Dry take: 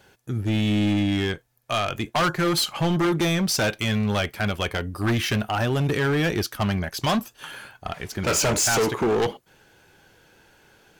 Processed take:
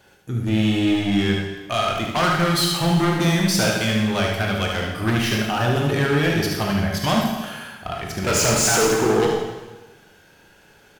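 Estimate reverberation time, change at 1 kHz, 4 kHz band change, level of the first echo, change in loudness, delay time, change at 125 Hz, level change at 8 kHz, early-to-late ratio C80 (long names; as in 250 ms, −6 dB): 1.2 s, +3.5 dB, +3.5 dB, −5.0 dB, +3.0 dB, 74 ms, +3.0 dB, +3.5 dB, 5.0 dB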